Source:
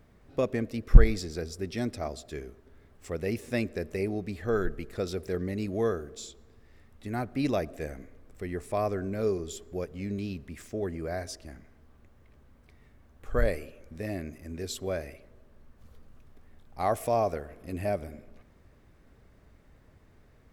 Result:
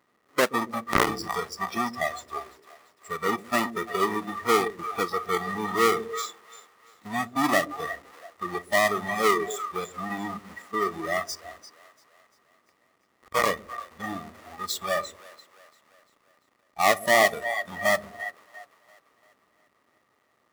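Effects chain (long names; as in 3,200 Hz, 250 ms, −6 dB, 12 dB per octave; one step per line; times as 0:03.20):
each half-wave held at its own peak
in parallel at −2 dB: downward compressor, threshold −31 dBFS, peak gain reduction 22 dB
on the sum: hollow resonant body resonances 1,200/1,900 Hz, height 12 dB, ringing for 20 ms
on a send: echo with a time of its own for lows and highs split 540 Hz, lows 125 ms, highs 344 ms, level −8 dB
on the sum: noise reduction from a noise print of the clip's start 15 dB
high-pass filter 320 Hz 12 dB per octave
wave folding −4 dBFS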